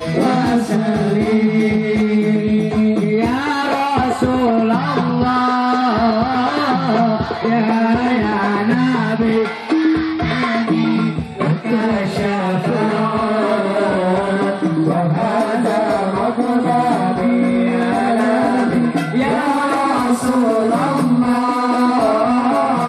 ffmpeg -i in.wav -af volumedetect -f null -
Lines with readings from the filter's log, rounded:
mean_volume: -15.7 dB
max_volume: -4.7 dB